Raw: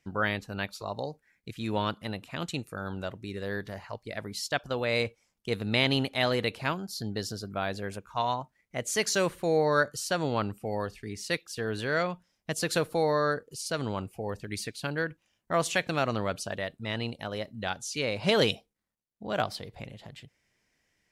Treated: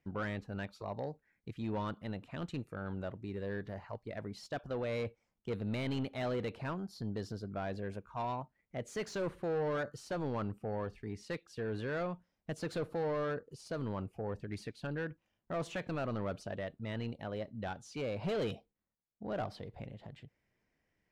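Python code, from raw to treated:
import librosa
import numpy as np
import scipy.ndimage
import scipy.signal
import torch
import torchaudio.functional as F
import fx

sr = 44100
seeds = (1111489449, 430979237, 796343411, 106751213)

y = 10.0 ** (-27.5 / 20.0) * np.tanh(x / 10.0 ** (-27.5 / 20.0))
y = fx.lowpass(y, sr, hz=1100.0, slope=6)
y = y * 10.0 ** (-2.0 / 20.0)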